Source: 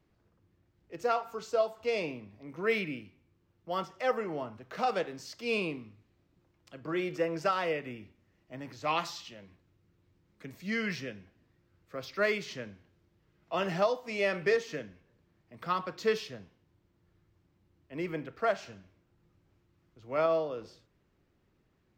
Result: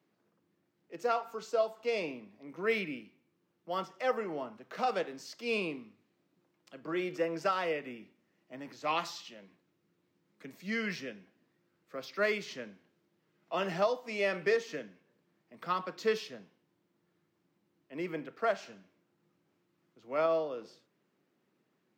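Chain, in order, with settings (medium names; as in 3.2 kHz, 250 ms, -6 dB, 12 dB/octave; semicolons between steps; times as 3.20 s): high-pass 170 Hz 24 dB/octave; trim -1.5 dB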